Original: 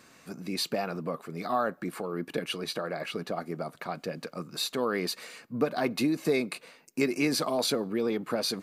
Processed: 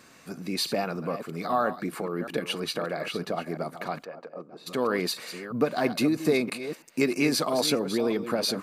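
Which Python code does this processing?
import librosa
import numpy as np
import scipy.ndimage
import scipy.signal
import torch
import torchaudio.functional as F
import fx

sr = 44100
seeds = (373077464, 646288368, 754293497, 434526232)

y = fx.reverse_delay(x, sr, ms=325, wet_db=-11)
y = fx.bandpass_q(y, sr, hz=fx.line((4.03, 1100.0), (4.66, 350.0)), q=1.5, at=(4.03, 4.66), fade=0.02)
y = y * librosa.db_to_amplitude(2.5)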